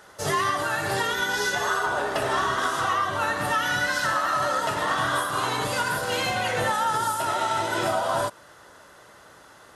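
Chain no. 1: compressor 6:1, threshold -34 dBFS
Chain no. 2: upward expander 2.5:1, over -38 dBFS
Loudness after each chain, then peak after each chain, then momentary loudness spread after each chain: -35.5, -29.0 LUFS; -22.5, -12.5 dBFS; 14, 5 LU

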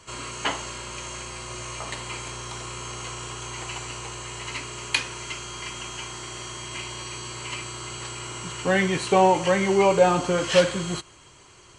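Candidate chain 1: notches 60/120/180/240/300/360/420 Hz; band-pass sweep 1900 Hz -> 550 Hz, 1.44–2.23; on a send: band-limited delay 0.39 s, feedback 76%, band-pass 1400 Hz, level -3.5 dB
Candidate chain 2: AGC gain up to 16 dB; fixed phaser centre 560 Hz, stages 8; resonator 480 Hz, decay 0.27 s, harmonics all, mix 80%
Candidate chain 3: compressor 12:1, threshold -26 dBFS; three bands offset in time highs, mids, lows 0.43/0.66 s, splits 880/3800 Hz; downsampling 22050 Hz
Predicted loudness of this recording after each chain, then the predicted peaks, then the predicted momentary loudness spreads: -26.5, -33.5, -34.0 LUFS; -6.5, -15.0, -14.5 dBFS; 23, 10, 5 LU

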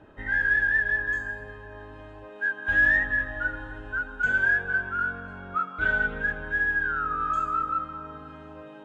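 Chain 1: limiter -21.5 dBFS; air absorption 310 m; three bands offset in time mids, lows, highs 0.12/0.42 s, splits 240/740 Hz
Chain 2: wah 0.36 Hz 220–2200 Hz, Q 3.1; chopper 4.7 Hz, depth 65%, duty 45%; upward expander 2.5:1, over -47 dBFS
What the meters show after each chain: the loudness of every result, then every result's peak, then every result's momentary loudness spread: -31.5, -36.0 LUFS; -21.5, -19.5 dBFS; 17, 17 LU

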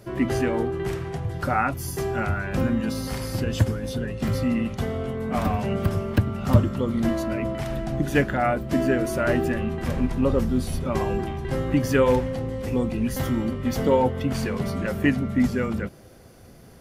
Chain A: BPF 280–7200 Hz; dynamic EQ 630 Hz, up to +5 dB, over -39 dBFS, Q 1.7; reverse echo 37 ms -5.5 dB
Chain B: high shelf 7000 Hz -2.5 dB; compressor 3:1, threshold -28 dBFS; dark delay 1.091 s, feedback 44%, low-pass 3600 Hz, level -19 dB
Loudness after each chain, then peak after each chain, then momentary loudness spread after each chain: -25.0, -31.0 LUFS; -6.5, -14.0 dBFS; 11, 3 LU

